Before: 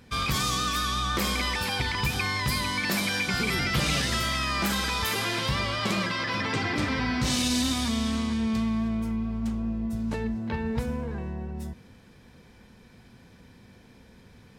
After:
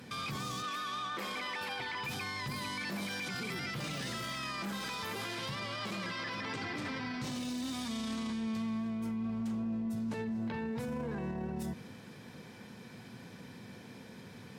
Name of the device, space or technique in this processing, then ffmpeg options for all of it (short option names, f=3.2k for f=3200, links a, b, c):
podcast mastering chain: -filter_complex "[0:a]asettb=1/sr,asplit=3[a][b][c];[a]atrim=end=0.624[d];[b]atrim=start=0.62:end=2.09,asetpts=PTS-STARTPTS,afade=t=in:d=0.004:c=qsin,afade=t=out:st=1.466:d=0.004:c=qsin,bass=f=250:g=-11,treble=f=4k:g=-10[e];[c]atrim=start=2.086[f];[d][e]acrossfade=d=0.004:c1=hsin:c2=qsin[g];[g][f]acrossfade=d=0.004:c1=qsin:c2=hsin,highpass=f=110:w=0.5412,highpass=f=110:w=1.3066,deesser=0.75,acompressor=threshold=-37dB:ratio=2,alimiter=level_in=10.5dB:limit=-24dB:level=0:latency=1:release=13,volume=-10.5dB,volume=4.5dB" -ar 48000 -c:a libmp3lame -b:a 112k